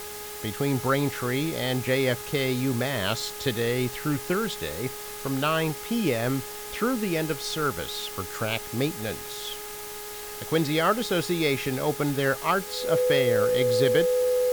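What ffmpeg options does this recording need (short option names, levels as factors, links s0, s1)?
-af "bandreject=f=416.9:t=h:w=4,bandreject=f=833.8:t=h:w=4,bandreject=f=1250.7:t=h:w=4,bandreject=f=1667.6:t=h:w=4,bandreject=f=2084.5:t=h:w=4,bandreject=f=500:w=30,afwtdn=0.011"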